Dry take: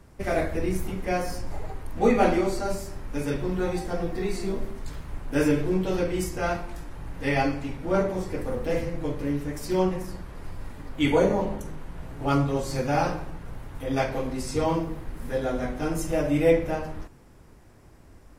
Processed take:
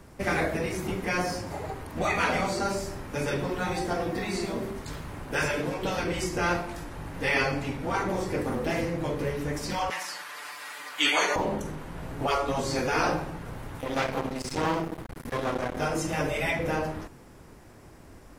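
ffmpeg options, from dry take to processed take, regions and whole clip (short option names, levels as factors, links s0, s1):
-filter_complex "[0:a]asettb=1/sr,asplit=3[s0][s1][s2];[s0]atrim=end=9.904[s3];[s1]atrim=start=9.9:end=11.36,asetpts=PTS-STARTPTS,afade=t=in:d=0.004:c=qsin,afade=t=out:st=1.456:d=0.004:c=qsin,highpass=1400,aecho=1:1:6.8:0.97,atrim=end_sample=64386,acontrast=66[s4];[s2]atrim=start=11.356[s5];[s3][s4]acrossfade=d=0.004:c1=hsin:c2=qsin[s6];[s6][s5]acrossfade=d=0.004:c1=qsin:c2=hsin,asettb=1/sr,asplit=3[s7][s8][s9];[s7]atrim=end=13.804[s10];[s8]atrim=start=13.8:end=15.77,asetpts=PTS-STARTPTS,afade=t=in:d=0.004:c=qsin,afade=t=out:st=1.966:d=0.004:c=qsin,bandreject=f=50:t=h:w=6,bandreject=f=100:t=h:w=6,bandreject=f=150:t=h:w=6,bandreject=f=200:t=h:w=6,bandreject=f=250:t=h:w=6,bandreject=f=300:t=h:w=6,bandreject=f=350:t=h:w=6,bandreject=f=400:t=h:w=6,aeval=exprs='max(val(0),0)':c=same[s11];[s9]atrim=start=15.766[s12];[s10][s11]acrossfade=d=0.004:c1=hsin:c2=qsin[s13];[s13][s12]acrossfade=d=0.004:c1=qsin:c2=hsin,acrossover=split=7600[s14][s15];[s15]acompressor=threshold=0.002:ratio=4:attack=1:release=60[s16];[s14][s16]amix=inputs=2:normalize=0,afftfilt=real='re*lt(hypot(re,im),0.251)':imag='im*lt(hypot(re,im),0.251)':win_size=1024:overlap=0.75,lowshelf=f=91:g=-8,volume=1.78"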